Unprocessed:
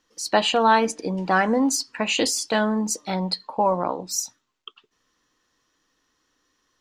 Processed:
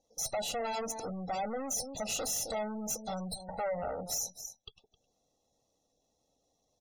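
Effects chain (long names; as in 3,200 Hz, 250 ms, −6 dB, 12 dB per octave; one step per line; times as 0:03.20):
lower of the sound and its delayed copy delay 0.32 ms
flat-topped bell 1,900 Hz −13.5 dB
notch filter 3,200 Hz, Q 24
single-tap delay 263 ms −18.5 dB
downward compressor 2 to 1, threshold −29 dBFS, peak gain reduction 7.5 dB
harmonic generator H 3 −26 dB, 4 −31 dB, 5 −24 dB, 6 −22 dB, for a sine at −13.5 dBFS
soft clipping −32 dBFS, distortion −7 dB
comb filter 1.5 ms, depth 63%
gate on every frequency bin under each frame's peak −25 dB strong
low-shelf EQ 180 Hz −9.5 dB
one half of a high-frequency compander decoder only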